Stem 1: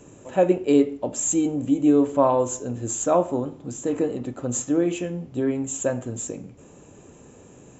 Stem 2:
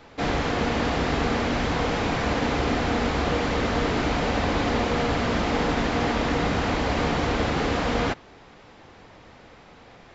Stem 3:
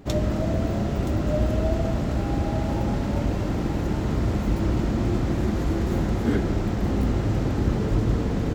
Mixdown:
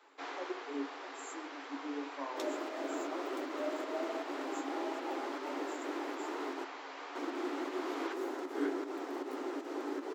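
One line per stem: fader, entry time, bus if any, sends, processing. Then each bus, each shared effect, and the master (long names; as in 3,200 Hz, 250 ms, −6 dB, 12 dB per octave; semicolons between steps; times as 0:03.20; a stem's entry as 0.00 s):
−17.0 dB, 0.00 s, no send, no processing
−4.5 dB, 0.00 s, no send, high-pass filter 670 Hz 6 dB per octave; automatic ducking −6 dB, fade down 0.70 s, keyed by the first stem
−1.5 dB, 2.30 s, muted 0:06.64–0:07.15, no send, fake sidechain pumping 156 BPM, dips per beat 1, −11 dB, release 134 ms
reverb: not used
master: Chebyshev high-pass with heavy ripple 270 Hz, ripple 6 dB; flanger 1.8 Hz, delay 7.4 ms, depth 7.8 ms, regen −45%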